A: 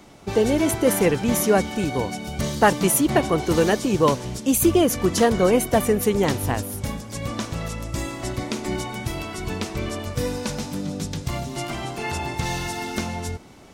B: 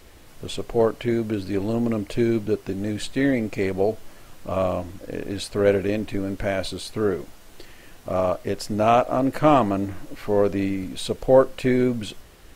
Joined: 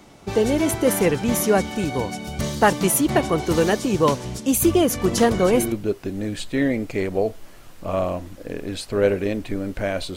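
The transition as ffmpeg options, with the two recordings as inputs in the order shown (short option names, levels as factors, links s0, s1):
-filter_complex "[1:a]asplit=2[s0][s1];[0:a]apad=whole_dur=10.16,atrim=end=10.16,atrim=end=5.722[s2];[s1]atrim=start=2.348:end=6.79[s3];[s0]atrim=start=1.67:end=2.35,asetpts=PTS-STARTPTS,volume=0.501,afade=t=in:d=0.004:c=hsin,afade=t=out:st=0.676:d=0.004:c=hsin,adelay=5040[s4];[s2][s3]acrossfade=d=0.004:c1=hsin:c2=hsin[s5];[s5][s4]amix=inputs=2:normalize=0"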